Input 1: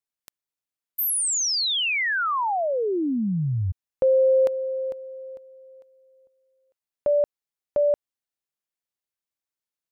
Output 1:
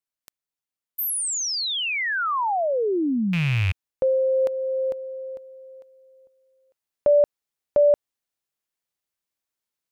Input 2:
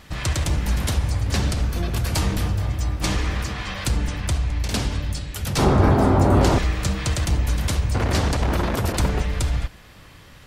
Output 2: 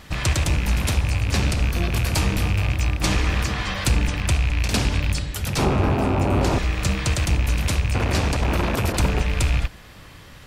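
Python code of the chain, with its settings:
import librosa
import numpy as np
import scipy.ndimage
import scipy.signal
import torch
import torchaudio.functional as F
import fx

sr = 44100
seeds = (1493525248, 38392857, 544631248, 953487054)

y = fx.rattle_buzz(x, sr, strikes_db=-23.0, level_db=-19.0)
y = fx.rider(y, sr, range_db=4, speed_s=0.5)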